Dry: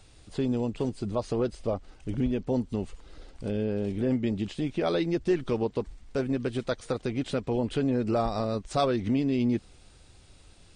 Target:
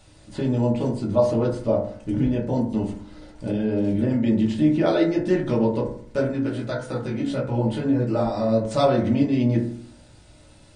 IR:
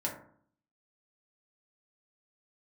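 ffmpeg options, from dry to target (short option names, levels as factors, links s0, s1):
-filter_complex "[1:a]atrim=start_sample=2205[s0];[0:a][s0]afir=irnorm=-1:irlink=0,asplit=3[s1][s2][s3];[s1]afade=t=out:st=6.31:d=0.02[s4];[s2]flanger=delay=15.5:depth=3.9:speed=1.6,afade=t=in:st=6.31:d=0.02,afade=t=out:st=8.61:d=0.02[s5];[s3]afade=t=in:st=8.61:d=0.02[s6];[s4][s5][s6]amix=inputs=3:normalize=0,volume=1.26"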